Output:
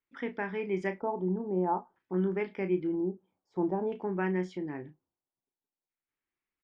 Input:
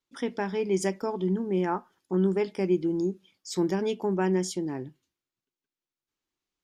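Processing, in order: LFO low-pass square 0.51 Hz 830–2100 Hz; doubling 33 ms -10 dB; trim -6 dB

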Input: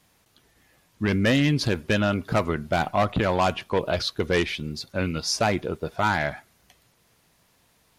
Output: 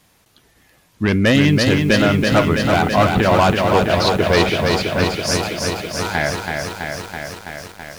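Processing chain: 5.04–6.15 s: pre-emphasis filter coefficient 0.8; bit-crushed delay 329 ms, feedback 80%, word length 8-bit, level -4 dB; trim +6.5 dB

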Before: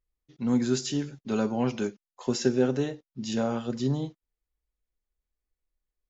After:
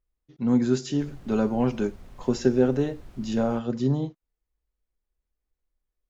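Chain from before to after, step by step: treble shelf 2.2 kHz -9.5 dB; 0.99–3.58 s: added noise brown -46 dBFS; trim +3.5 dB

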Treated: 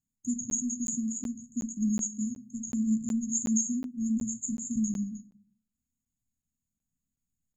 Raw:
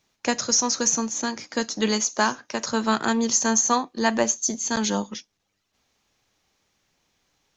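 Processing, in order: gate -43 dBFS, range -8 dB; brick-wall FIR band-stop 280–6500 Hz; on a send at -8 dB: reverberation RT60 0.45 s, pre-delay 3 ms; on the sum: crackling interface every 0.37 s, samples 512, zero, from 0.50 s; trim -3.5 dB

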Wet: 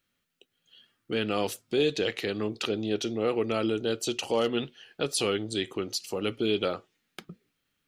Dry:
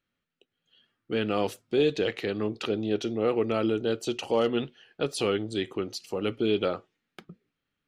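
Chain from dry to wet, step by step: treble shelf 3.5 kHz +10 dB; in parallel at -2 dB: compression, threshold -38 dBFS, peak gain reduction 17.5 dB; on the sum: trim -3 dB

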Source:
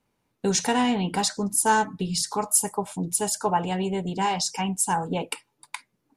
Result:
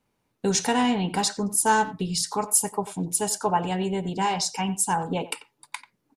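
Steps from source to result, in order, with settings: speakerphone echo 90 ms, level -15 dB

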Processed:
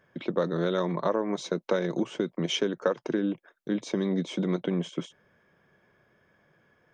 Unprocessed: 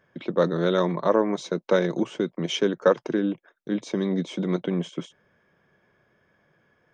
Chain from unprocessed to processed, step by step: compression 4:1, threshold -23 dBFS, peak gain reduction 9 dB

